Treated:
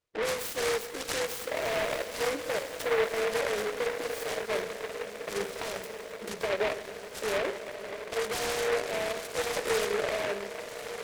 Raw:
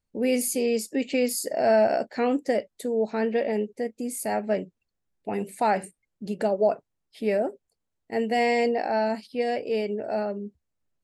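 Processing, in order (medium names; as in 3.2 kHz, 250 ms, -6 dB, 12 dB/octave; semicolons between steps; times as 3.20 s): fade out at the end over 1.29 s; frequency weighting D; level-controlled noise filter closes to 2 kHz, open at -19.5 dBFS; peaking EQ 680 Hz +2.5 dB 1.1 oct; hum notches 60/120/180/240/300/360/420/480/540 Hz; compression 6:1, threshold -30 dBFS, peak gain reduction 14.5 dB; peak limiter -26 dBFS, peak gain reduction 7 dB; static phaser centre 1.2 kHz, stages 8; touch-sensitive flanger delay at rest 8.4 ms, full sweep at -35.5 dBFS; on a send: echo that smears into a reverb 1413 ms, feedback 52%, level -9 dB; on the sum: Schroeder reverb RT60 3.4 s, DRR 11 dB; delay time shaken by noise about 1.3 kHz, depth 0.17 ms; trim +8 dB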